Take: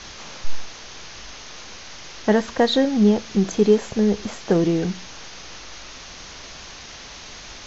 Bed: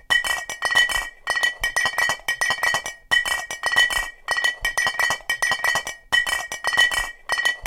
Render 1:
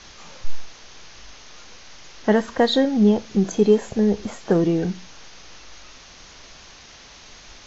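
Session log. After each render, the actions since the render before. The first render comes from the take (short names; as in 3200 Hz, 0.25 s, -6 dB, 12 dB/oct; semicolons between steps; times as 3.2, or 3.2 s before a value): noise print and reduce 6 dB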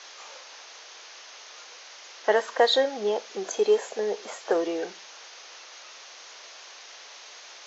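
HPF 450 Hz 24 dB/oct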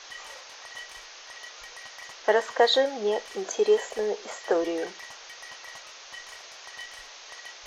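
add bed -25 dB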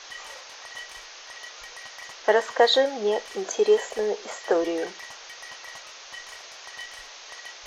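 gain +2 dB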